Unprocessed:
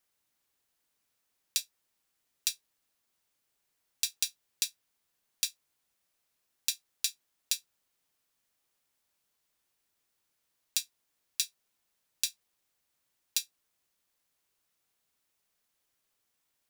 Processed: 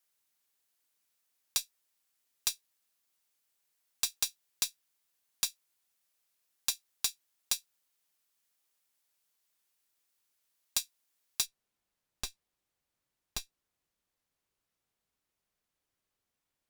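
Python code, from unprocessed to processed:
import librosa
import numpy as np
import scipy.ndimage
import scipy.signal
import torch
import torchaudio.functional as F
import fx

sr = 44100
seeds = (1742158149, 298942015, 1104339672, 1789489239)

y = fx.tube_stage(x, sr, drive_db=18.0, bias=0.7)
y = fx.tilt_eq(y, sr, slope=fx.steps((0.0, 1.5), (11.45, -1.5)))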